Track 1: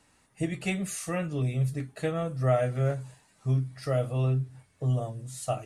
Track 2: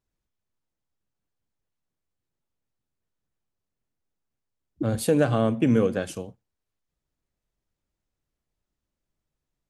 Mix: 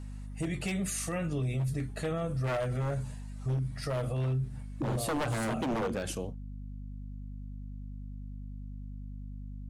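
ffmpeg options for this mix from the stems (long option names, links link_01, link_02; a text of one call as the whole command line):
ffmpeg -i stem1.wav -i stem2.wav -filter_complex "[0:a]volume=2.5dB[link_01];[1:a]aeval=exprs='val(0)+0.00891*(sin(2*PI*50*n/s)+sin(2*PI*2*50*n/s)/2+sin(2*PI*3*50*n/s)/3+sin(2*PI*4*50*n/s)/4+sin(2*PI*5*50*n/s)/5)':channel_layout=same,volume=1dB[link_02];[link_01][link_02]amix=inputs=2:normalize=0,aeval=exprs='0.119*(abs(mod(val(0)/0.119+3,4)-2)-1)':channel_layout=same,alimiter=level_in=1.5dB:limit=-24dB:level=0:latency=1:release=30,volume=-1.5dB" out.wav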